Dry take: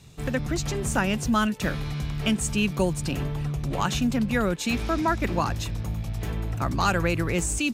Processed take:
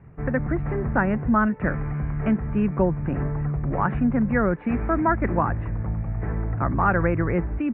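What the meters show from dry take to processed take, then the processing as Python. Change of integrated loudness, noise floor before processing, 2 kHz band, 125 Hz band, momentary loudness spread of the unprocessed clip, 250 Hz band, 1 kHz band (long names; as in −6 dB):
+2.0 dB, −33 dBFS, +0.5 dB, +3.0 dB, 7 LU, +3.0 dB, +3.0 dB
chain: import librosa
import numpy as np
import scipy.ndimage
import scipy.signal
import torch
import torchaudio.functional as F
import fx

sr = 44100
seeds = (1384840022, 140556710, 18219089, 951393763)

y = scipy.signal.sosfilt(scipy.signal.butter(8, 2000.0, 'lowpass', fs=sr, output='sos'), x)
y = y * librosa.db_to_amplitude(3.0)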